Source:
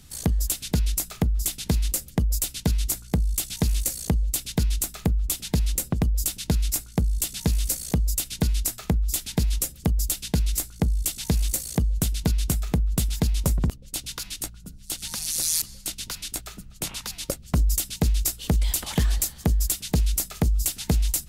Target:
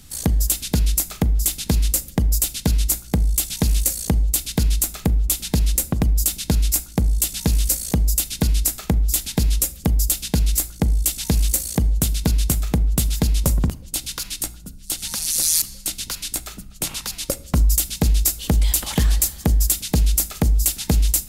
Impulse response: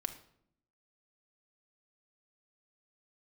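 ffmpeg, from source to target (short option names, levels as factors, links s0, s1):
-filter_complex "[0:a]asplit=2[s0][s1];[1:a]atrim=start_sample=2205,highshelf=f=5800:g=8[s2];[s1][s2]afir=irnorm=-1:irlink=0,volume=0.596[s3];[s0][s3]amix=inputs=2:normalize=0"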